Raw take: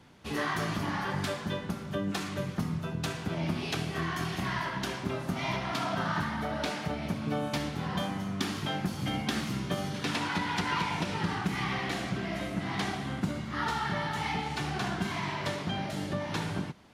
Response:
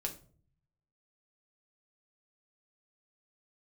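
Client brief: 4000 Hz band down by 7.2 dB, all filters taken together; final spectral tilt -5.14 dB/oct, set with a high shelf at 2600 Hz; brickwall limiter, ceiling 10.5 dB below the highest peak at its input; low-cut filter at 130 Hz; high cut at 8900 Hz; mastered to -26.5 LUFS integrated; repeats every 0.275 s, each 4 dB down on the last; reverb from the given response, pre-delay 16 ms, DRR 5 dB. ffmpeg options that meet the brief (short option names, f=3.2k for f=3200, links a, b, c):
-filter_complex "[0:a]highpass=130,lowpass=8.9k,highshelf=f=2.6k:g=-6.5,equalizer=f=4k:t=o:g=-4,alimiter=level_in=4.5dB:limit=-24dB:level=0:latency=1,volume=-4.5dB,aecho=1:1:275|550|825|1100|1375|1650|1925|2200|2475:0.631|0.398|0.25|0.158|0.0994|0.0626|0.0394|0.0249|0.0157,asplit=2[a][b];[1:a]atrim=start_sample=2205,adelay=16[c];[b][c]afir=irnorm=-1:irlink=0,volume=-5.5dB[d];[a][d]amix=inputs=2:normalize=0,volume=7.5dB"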